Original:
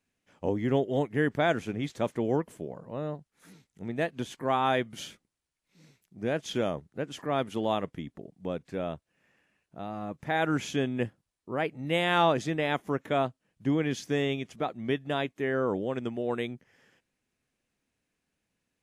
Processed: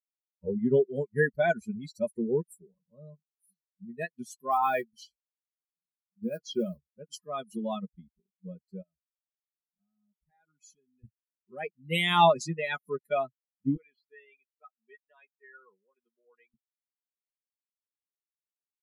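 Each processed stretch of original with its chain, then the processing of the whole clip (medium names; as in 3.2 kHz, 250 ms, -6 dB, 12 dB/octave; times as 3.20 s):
4.51–6.86 s: block-companded coder 5-bit + treble shelf 6.2 kHz -12 dB + doubling 22 ms -12 dB
8.82–11.04 s: treble shelf 4.1 kHz -2.5 dB + compression 2:1, threshold -51 dBFS
13.76–16.54 s: high-pass 1.2 kHz 6 dB/octave + distance through air 430 m
whole clip: expander on every frequency bin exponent 3; treble shelf 5.4 kHz +6 dB; comb 4.8 ms, depth 76%; trim +4 dB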